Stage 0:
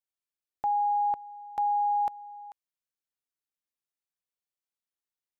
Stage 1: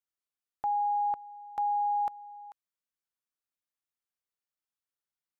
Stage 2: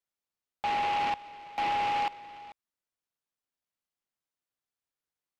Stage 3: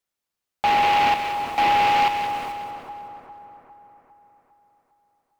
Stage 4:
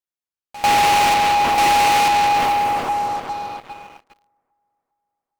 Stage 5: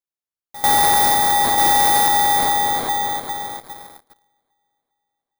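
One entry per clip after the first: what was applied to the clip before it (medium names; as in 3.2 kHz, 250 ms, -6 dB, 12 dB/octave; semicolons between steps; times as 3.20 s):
peaking EQ 1.3 kHz +4.5 dB; trim -3.5 dB
delay time shaken by noise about 1.5 kHz, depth 0.081 ms
in parallel at -5 dB: word length cut 8-bit, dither none; on the sum: two-band feedback delay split 1.4 kHz, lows 404 ms, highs 186 ms, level -7.5 dB; trim +6.5 dB
waveshaping leveller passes 5; pre-echo 95 ms -18.5 dB; trim -2 dB
bit-reversed sample order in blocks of 16 samples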